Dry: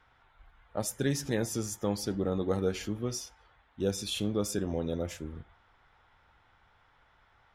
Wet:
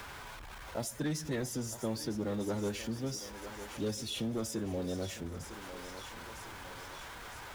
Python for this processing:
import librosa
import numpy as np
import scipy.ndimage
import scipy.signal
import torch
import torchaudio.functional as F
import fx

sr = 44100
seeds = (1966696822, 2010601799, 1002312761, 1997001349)

p1 = x + 0.5 * 10.0 ** (-42.5 / 20.0) * np.sign(x)
p2 = fx.pitch_keep_formants(p1, sr, semitones=1.5)
p3 = np.clip(p2, -10.0 ** (-23.5 / 20.0), 10.0 ** (-23.5 / 20.0))
p4 = p3 + fx.echo_thinned(p3, sr, ms=954, feedback_pct=63, hz=390.0, wet_db=-13.5, dry=0)
p5 = fx.band_squash(p4, sr, depth_pct=40)
y = p5 * librosa.db_to_amplitude(-4.5)